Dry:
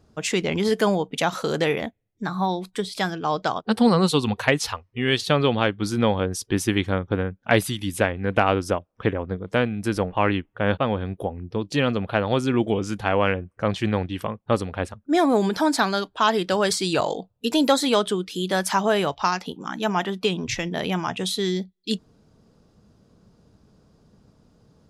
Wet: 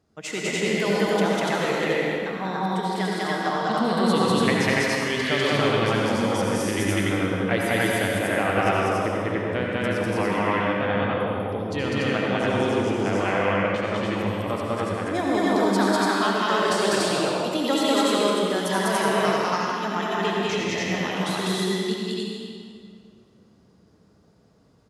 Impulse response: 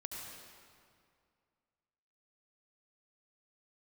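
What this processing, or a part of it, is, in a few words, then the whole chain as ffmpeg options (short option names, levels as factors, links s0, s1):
stadium PA: -filter_complex "[0:a]highpass=f=130:p=1,equalizer=f=2000:t=o:w=0.24:g=5.5,aecho=1:1:198.3|244.9|288.6:1|0.251|0.891[s0];[1:a]atrim=start_sample=2205[s1];[s0][s1]afir=irnorm=-1:irlink=0,volume=0.708"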